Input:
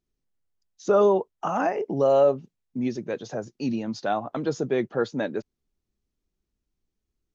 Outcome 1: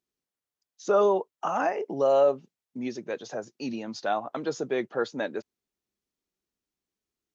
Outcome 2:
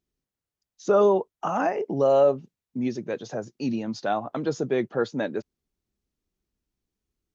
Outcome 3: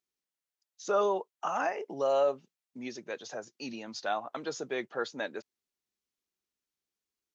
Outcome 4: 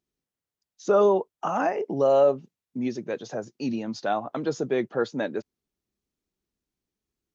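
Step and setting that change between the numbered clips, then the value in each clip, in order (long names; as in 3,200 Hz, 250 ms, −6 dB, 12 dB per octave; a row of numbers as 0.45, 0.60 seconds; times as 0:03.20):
high-pass filter, corner frequency: 450, 43, 1,300, 150 Hertz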